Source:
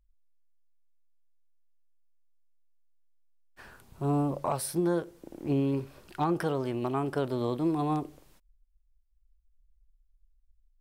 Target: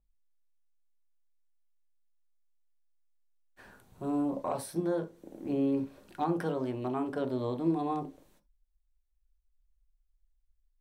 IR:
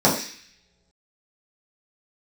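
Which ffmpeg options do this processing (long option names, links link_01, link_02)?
-filter_complex "[0:a]asplit=2[link_01][link_02];[1:a]atrim=start_sample=2205,atrim=end_sample=3528[link_03];[link_02][link_03]afir=irnorm=-1:irlink=0,volume=-25dB[link_04];[link_01][link_04]amix=inputs=2:normalize=0,adynamicequalizer=threshold=0.00178:dfrequency=6800:dqfactor=0.7:tfrequency=6800:tqfactor=0.7:attack=5:release=100:ratio=0.375:range=3:mode=cutabove:tftype=highshelf,volume=-6dB"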